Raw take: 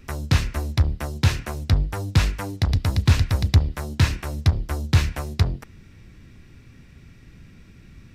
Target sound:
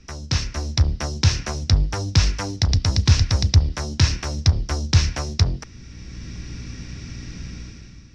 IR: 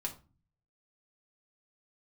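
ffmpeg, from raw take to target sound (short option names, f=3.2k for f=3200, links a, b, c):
-filter_complex "[0:a]aeval=exprs='val(0)+0.00501*(sin(2*PI*60*n/s)+sin(2*PI*2*60*n/s)/2+sin(2*PI*3*60*n/s)/3+sin(2*PI*4*60*n/s)/4+sin(2*PI*5*60*n/s)/5)':c=same,dynaudnorm=f=110:g=11:m=15dB,lowpass=f=5.6k:t=q:w=5.5,acrossover=split=130[a][b];[b]acompressor=threshold=-15dB:ratio=4[c];[a][c]amix=inputs=2:normalize=0,volume=-4.5dB"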